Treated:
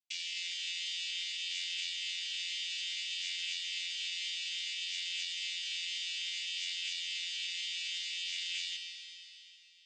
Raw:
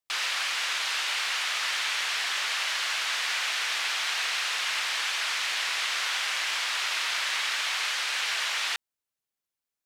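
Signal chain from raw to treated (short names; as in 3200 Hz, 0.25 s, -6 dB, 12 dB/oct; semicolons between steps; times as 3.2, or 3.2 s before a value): chord vocoder bare fifth, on F3; steep high-pass 2400 Hz 48 dB/oct; limiter -28 dBFS, peak gain reduction 7.5 dB; reverb RT60 3.1 s, pre-delay 27 ms, DRR 1.5 dB; gain -2 dB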